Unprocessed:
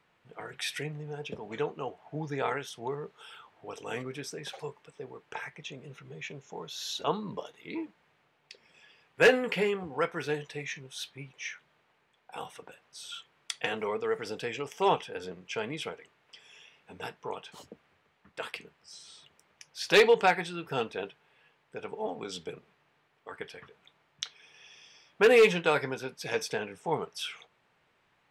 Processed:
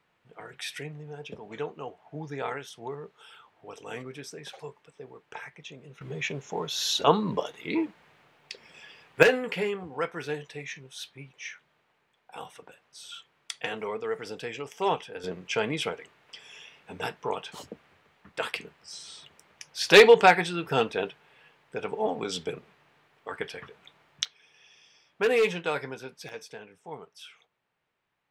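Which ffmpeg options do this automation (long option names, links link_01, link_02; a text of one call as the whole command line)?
ffmpeg -i in.wav -af "asetnsamples=nb_out_samples=441:pad=0,asendcmd='6.01 volume volume 9dB;9.23 volume volume -1dB;15.24 volume volume 6.5dB;24.25 volume volume -3.5dB;26.29 volume volume -10.5dB',volume=-2dB" out.wav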